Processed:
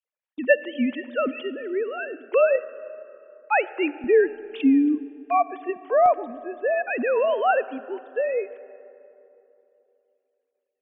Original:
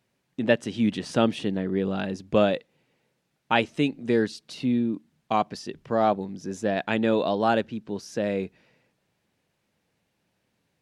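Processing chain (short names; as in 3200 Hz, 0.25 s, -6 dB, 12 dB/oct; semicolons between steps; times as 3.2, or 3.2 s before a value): sine-wave speech; HPF 560 Hz 6 dB/oct, from 4.04 s 74 Hz, from 6.06 s 500 Hz; gate -53 dBFS, range -14 dB; digital reverb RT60 3.1 s, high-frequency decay 0.45×, pre-delay 15 ms, DRR 16 dB; gain +4.5 dB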